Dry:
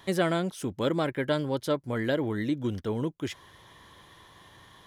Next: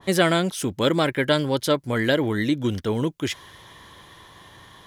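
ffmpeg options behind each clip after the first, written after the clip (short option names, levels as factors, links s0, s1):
-af "adynamicequalizer=threshold=0.00794:dfrequency=1600:dqfactor=0.7:tfrequency=1600:tqfactor=0.7:attack=5:release=100:ratio=0.375:range=3:mode=boostabove:tftype=highshelf,volume=2"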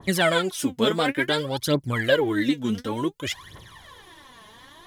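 -af "aphaser=in_gain=1:out_gain=1:delay=4.8:decay=0.74:speed=0.56:type=triangular,volume=0.668"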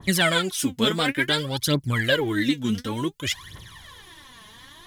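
-af "equalizer=f=590:t=o:w=2.4:g=-8.5,volume=1.68"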